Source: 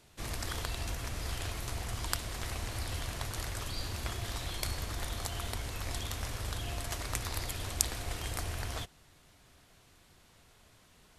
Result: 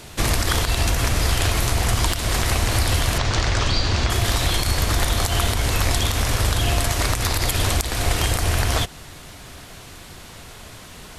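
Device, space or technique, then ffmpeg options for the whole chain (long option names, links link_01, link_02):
loud club master: -filter_complex "[0:a]asettb=1/sr,asplit=3[link_01][link_02][link_03];[link_01]atrim=end=3.184[link_04];[link_02]atrim=start=3.18:end=4.1,asetpts=PTS-STARTPTS,afade=type=in:duration=0.004:curve=qsin,afade=type=out:start_time=0.916:duration=0.004:curve=qsin,lowpass=frequency=6400:width=0.5412,lowpass=frequency=6400:width=1.3066[link_05];[link_03]atrim=start=4.096[link_06];[link_04][link_05]acrossfade=duration=0.004:curve1=hsin:curve2=qsin[link_07];[link_07][link_06]acrossfade=duration=0.004:curve1=qsin:curve2=hsin,acompressor=threshold=-38dB:ratio=3,asoftclip=type=hard:threshold=-18.5dB,alimiter=level_in=27.5dB:limit=-1dB:release=50:level=0:latency=1,volume=-6dB"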